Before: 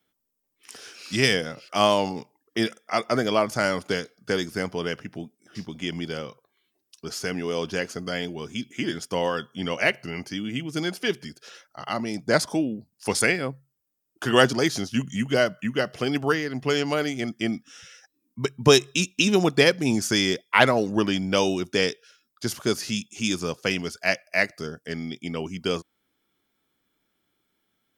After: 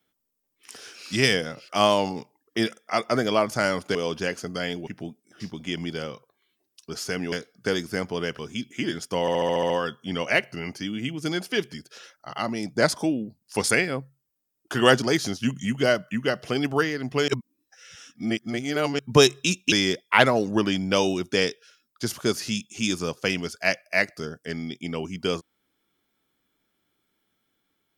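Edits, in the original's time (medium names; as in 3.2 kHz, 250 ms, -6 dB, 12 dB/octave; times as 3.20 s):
3.95–5.02 s: swap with 7.47–8.39 s
9.21 s: stutter 0.07 s, 8 plays
16.79–18.50 s: reverse
19.23–20.13 s: delete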